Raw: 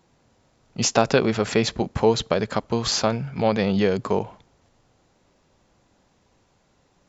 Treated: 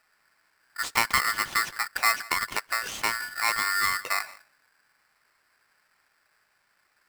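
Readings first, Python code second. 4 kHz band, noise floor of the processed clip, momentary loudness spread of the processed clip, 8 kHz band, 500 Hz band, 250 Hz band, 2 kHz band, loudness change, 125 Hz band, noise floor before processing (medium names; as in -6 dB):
-2.5 dB, -70 dBFS, 6 LU, no reading, -22.5 dB, -24.0 dB, +6.5 dB, -3.5 dB, -23.0 dB, -64 dBFS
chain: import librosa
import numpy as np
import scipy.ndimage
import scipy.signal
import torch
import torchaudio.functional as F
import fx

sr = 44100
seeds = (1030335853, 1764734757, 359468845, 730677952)

p1 = fx.high_shelf(x, sr, hz=2700.0, db=-11.5)
p2 = p1 + fx.echo_single(p1, sr, ms=168, db=-21.0, dry=0)
p3 = p2 * np.sign(np.sin(2.0 * np.pi * 1600.0 * np.arange(len(p2)) / sr))
y = p3 * librosa.db_to_amplitude(-5.0)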